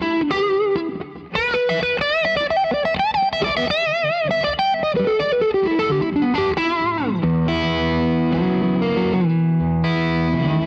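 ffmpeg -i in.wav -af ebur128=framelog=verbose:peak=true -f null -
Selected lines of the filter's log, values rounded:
Integrated loudness:
  I:         -19.4 LUFS
  Threshold: -29.4 LUFS
Loudness range:
  LRA:         0.8 LU
  Threshold: -39.3 LUFS
  LRA low:   -19.8 LUFS
  LRA high:  -19.1 LUFS
True peak:
  Peak:       -8.5 dBFS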